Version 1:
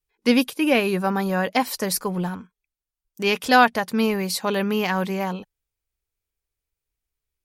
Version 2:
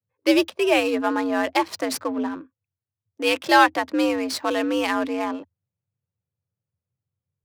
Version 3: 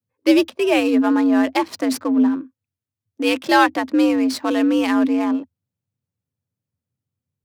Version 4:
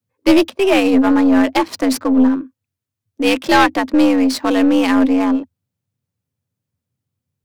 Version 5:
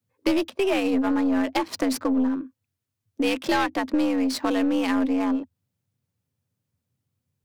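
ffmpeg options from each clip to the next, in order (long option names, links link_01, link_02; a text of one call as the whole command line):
ffmpeg -i in.wav -af "adynamicsmooth=sensitivity=7:basefreq=1200,afreqshift=81" out.wav
ffmpeg -i in.wav -af "equalizer=frequency=250:width_type=o:width=0.6:gain=12" out.wav
ffmpeg -i in.wav -af "aeval=exprs='(tanh(3.16*val(0)+0.4)-tanh(0.4))/3.16':channel_layout=same,volume=6dB" out.wav
ffmpeg -i in.wav -af "acompressor=threshold=-23dB:ratio=3" out.wav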